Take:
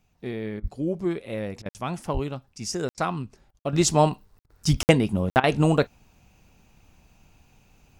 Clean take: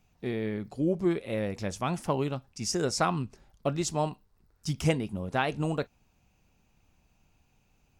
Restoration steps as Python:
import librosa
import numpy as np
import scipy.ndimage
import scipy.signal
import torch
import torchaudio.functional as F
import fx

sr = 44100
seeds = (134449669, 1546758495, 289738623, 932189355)

y = fx.fix_deplosive(x, sr, at_s=(0.61, 2.13, 4.7))
y = fx.fix_interpolate(y, sr, at_s=(1.69, 2.89, 3.59, 4.39, 4.83, 5.3), length_ms=59.0)
y = fx.fix_interpolate(y, sr, at_s=(0.6, 1.62, 2.94, 3.51, 4.46, 5.4), length_ms=35.0)
y = fx.fix_level(y, sr, at_s=3.73, step_db=-10.0)